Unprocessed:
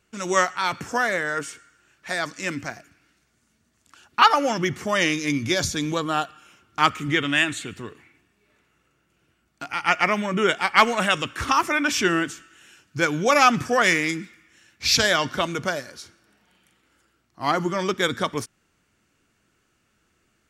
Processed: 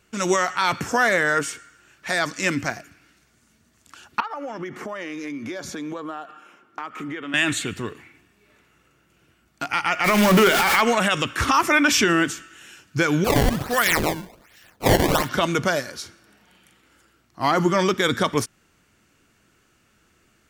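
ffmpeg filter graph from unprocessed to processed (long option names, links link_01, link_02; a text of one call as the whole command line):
ffmpeg -i in.wav -filter_complex "[0:a]asettb=1/sr,asplit=3[link_01][link_02][link_03];[link_01]atrim=end=4.204[link_04];[link_02]atrim=start=4.2:end=7.34,asetpts=PTS-STARTPTS,afade=type=in:duration=0.004:curve=qsin,afade=type=out:start_time=3.136:duration=0.004:curve=qsin,acrossover=split=210 2000:gain=0.0794 1 0.224[link_05][link_06][link_07];[link_05][link_06][link_07]amix=inputs=3:normalize=0,acompressor=threshold=-34dB:ratio=10:attack=3.2:release=140:knee=1:detection=peak[link_08];[link_03]atrim=start=7.336[link_09];[link_04][link_08]acrossfade=duration=0.004:curve1=hsin:curve2=qsin[link_10];[link_10][link_09]acrossfade=duration=0.004:curve1=qsin:curve2=hsin,asettb=1/sr,asplit=3[link_11][link_12][link_13];[link_11]atrim=end=10.044[link_14];[link_12]atrim=start=10.04:end=10.81,asetpts=PTS-STARTPTS,afade=type=in:duration=0.004:curve=qsin,afade=type=out:start_time=0.766:duration=0.004:curve=qsin,aeval=exprs='val(0)+0.5*0.1*sgn(val(0))':channel_layout=same,bandreject=frequency=50:width_type=h:width=6,bandreject=frequency=100:width_type=h:width=6,bandreject=frequency=150:width_type=h:width=6,bandreject=frequency=200:width_type=h:width=6,bandreject=frequency=250:width_type=h:width=6,bandreject=frequency=300:width_type=h:width=6,bandreject=frequency=350:width_type=h:width=6,bandreject=frequency=400:width_type=h:width=6[link_15];[link_13]atrim=start=10.806[link_16];[link_14][link_15]acrossfade=duration=0.004:curve1=hsin:curve2=qsin[link_17];[link_17][link_16]acrossfade=duration=0.004:curve1=qsin:curve2=hsin,asettb=1/sr,asplit=3[link_18][link_19][link_20];[link_18]atrim=end=13.244[link_21];[link_19]atrim=start=13.24:end=15.29,asetpts=PTS-STARTPTS,afade=type=in:duration=0.004:curve=qsin,afade=type=out:start_time=2.046:duration=0.004:curve=qsin,equalizer=frequency=410:width_type=o:width=3:gain=-10,acrusher=samples=20:mix=1:aa=0.000001:lfo=1:lforange=32:lforate=1.3[link_22];[link_20]atrim=start=15.286[link_23];[link_21][link_22]acrossfade=duration=0.004:curve1=hsin:curve2=qsin[link_24];[link_24][link_23]acrossfade=duration=0.004:curve1=qsin:curve2=hsin,equalizer=frequency=13000:width=6.8:gain=6.5,alimiter=level_in=13.5dB:limit=-1dB:release=50:level=0:latency=1,volume=-7.5dB" out.wav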